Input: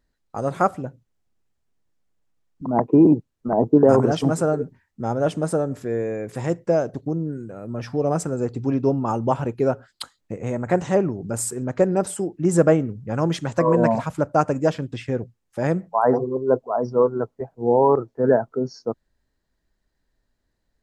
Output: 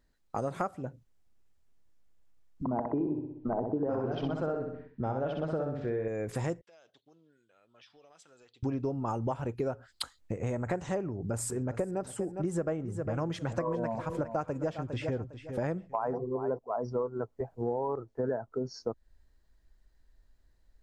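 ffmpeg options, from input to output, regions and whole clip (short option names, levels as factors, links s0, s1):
-filter_complex "[0:a]asettb=1/sr,asplit=3[s0][s1][s2];[s0]atrim=end=2.644[s3];[s1]atrim=start=2.64:end=6.08,asetpts=PTS-STARTPTS,afade=t=in:d=0.004:c=qsin,afade=t=out:st=3.436:d=0.004:c=qsin,lowpass=f=3900:w=0.5412,lowpass=f=3900:w=1.3066,aecho=1:1:63|126|189|252|315:0.562|0.236|0.0992|0.0417|0.0175,atrim=end_sample=151704[s4];[s2]atrim=start=6.076[s5];[s3][s4]acrossfade=d=0.004:c1=hsin:c2=qsin[s6];[s6][s5]acrossfade=d=0.004:c1=qsin:c2=hsin,asettb=1/sr,asplit=3[s7][s8][s9];[s7]atrim=end=6.614[s10];[s8]atrim=start=6.61:end=8.63,asetpts=PTS-STARTPTS,afade=t=in:d=0.004:c=qsin,afade=t=out:st=2.016:d=0.004:c=qsin,bandpass=f=3400:t=q:w=5,acompressor=threshold=0.00224:ratio=12:attack=3.2:release=140:knee=1:detection=peak[s11];[s9]atrim=start=8.626[s12];[s10][s11]acrossfade=d=0.004:c1=hsin:c2=qsin[s13];[s13][s12]acrossfade=d=0.004:c1=qsin:c2=hsin,asettb=1/sr,asplit=3[s14][s15][s16];[s14]atrim=end=11.094[s17];[s15]atrim=start=11.09:end=16.59,asetpts=PTS-STARTPTS,afade=t=in:d=0.004:c=qsin,afade=t=out:st=5.496:d=0.004:c=qsin,highshelf=f=4100:g=-7.5,aecho=1:1:406|812:0.188|0.0414,atrim=end_sample=242550[s18];[s16]atrim=start=16.586[s19];[s17][s18]acrossfade=d=0.004:c1=hsin:c2=qsin[s20];[s20][s19]acrossfade=d=0.004:c1=qsin:c2=hsin,asubboost=boost=3.5:cutoff=82,acompressor=threshold=0.0316:ratio=6"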